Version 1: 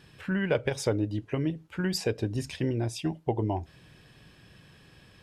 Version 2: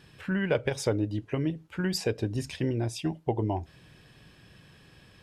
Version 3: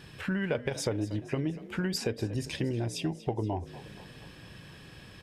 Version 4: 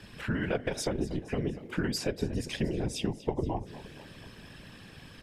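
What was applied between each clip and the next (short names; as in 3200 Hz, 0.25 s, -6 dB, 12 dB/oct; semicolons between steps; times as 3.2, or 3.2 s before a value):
nothing audible
compressor 2.5:1, threshold -37 dBFS, peak gain reduction 11 dB; frequency-shifting echo 0.237 s, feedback 54%, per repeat +48 Hz, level -16.5 dB; gain +5.5 dB
whisperiser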